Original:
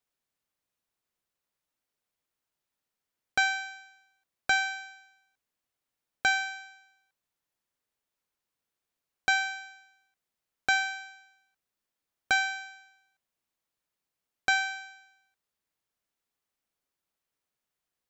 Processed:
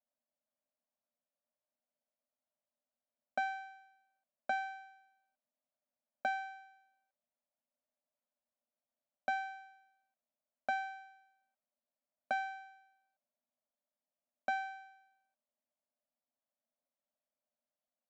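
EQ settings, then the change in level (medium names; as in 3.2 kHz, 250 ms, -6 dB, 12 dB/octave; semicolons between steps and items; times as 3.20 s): two resonant band-passes 380 Hz, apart 1.3 oct; bass shelf 420 Hz -10.5 dB; +9.5 dB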